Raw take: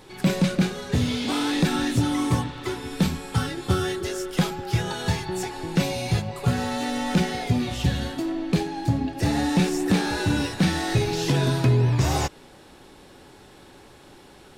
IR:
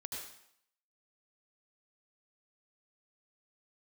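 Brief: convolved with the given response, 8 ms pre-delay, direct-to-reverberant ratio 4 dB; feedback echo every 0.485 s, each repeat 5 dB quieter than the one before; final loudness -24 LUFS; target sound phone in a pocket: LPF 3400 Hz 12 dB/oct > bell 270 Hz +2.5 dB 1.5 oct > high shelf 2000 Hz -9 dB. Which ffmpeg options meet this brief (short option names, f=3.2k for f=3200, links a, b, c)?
-filter_complex "[0:a]aecho=1:1:485|970|1455|1940|2425|2910|3395:0.562|0.315|0.176|0.0988|0.0553|0.031|0.0173,asplit=2[a][b];[1:a]atrim=start_sample=2205,adelay=8[c];[b][c]afir=irnorm=-1:irlink=0,volume=-2.5dB[d];[a][d]amix=inputs=2:normalize=0,lowpass=3.4k,equalizer=f=270:t=o:w=1.5:g=2.5,highshelf=f=2k:g=-9,volume=-3dB"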